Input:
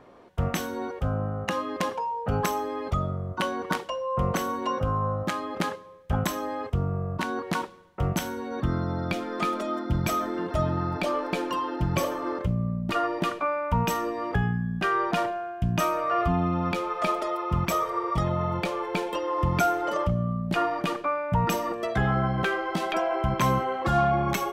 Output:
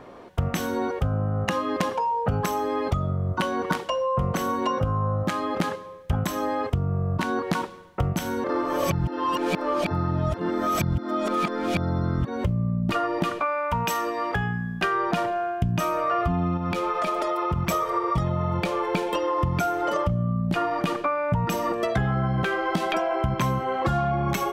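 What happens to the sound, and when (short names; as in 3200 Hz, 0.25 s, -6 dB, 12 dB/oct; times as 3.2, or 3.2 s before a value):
8.44–12.44 reverse
13.42–14.83 low shelf 430 Hz -11.5 dB
16.57–17.69 compressor, threshold -27 dBFS
whole clip: dynamic EQ 110 Hz, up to +5 dB, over -38 dBFS, Q 0.74; compressor, threshold -29 dBFS; gain +7.5 dB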